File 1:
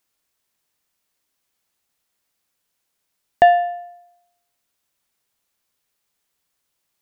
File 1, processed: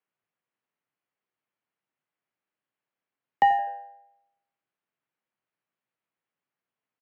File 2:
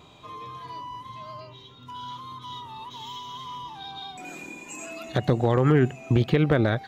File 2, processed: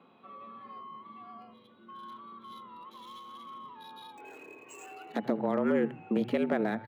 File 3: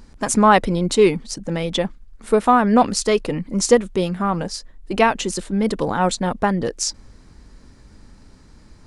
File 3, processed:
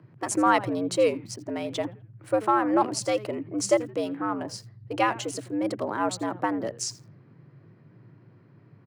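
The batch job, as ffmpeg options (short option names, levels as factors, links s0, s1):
-filter_complex "[0:a]bandreject=f=3500:w=15,asplit=4[s0][s1][s2][s3];[s1]adelay=83,afreqshift=-100,volume=0.133[s4];[s2]adelay=166,afreqshift=-200,volume=0.0442[s5];[s3]adelay=249,afreqshift=-300,volume=0.0145[s6];[s0][s4][s5][s6]amix=inputs=4:normalize=0,acrossover=split=2900[s7][s8];[s8]aeval=exprs='sgn(val(0))*max(abs(val(0))-0.00447,0)':c=same[s9];[s7][s9]amix=inputs=2:normalize=0,afreqshift=100,volume=0.398"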